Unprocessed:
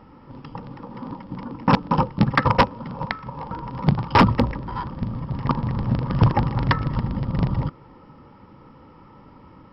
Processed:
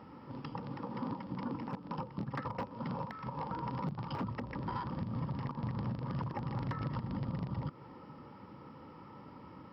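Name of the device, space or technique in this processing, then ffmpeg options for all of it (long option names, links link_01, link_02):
broadcast voice chain: -af "highpass=97,deesser=0.85,acompressor=threshold=-27dB:ratio=5,equalizer=frequency=4700:width_type=o:width=0.34:gain=2,alimiter=level_in=0.5dB:limit=-24dB:level=0:latency=1:release=155,volume=-0.5dB,volume=-3.5dB"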